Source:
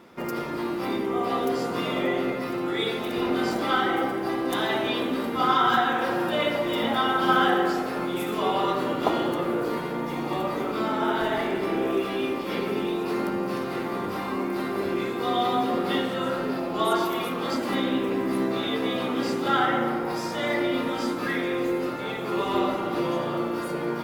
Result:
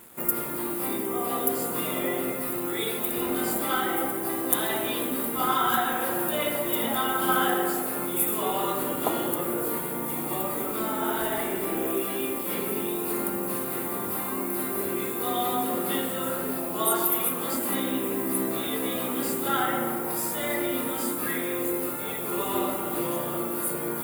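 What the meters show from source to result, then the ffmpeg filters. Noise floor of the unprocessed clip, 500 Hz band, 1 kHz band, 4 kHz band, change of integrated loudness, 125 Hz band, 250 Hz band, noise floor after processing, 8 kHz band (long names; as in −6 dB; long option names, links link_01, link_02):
−31 dBFS, −3.5 dB, −3.5 dB, −3.5 dB, −0.5 dB, −3.5 dB, −3.5 dB, −31 dBFS, +15.0 dB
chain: -af "acrusher=bits=7:mix=0:aa=0.5,aexciter=amount=11.5:drive=6.5:freq=8000,volume=-3.5dB"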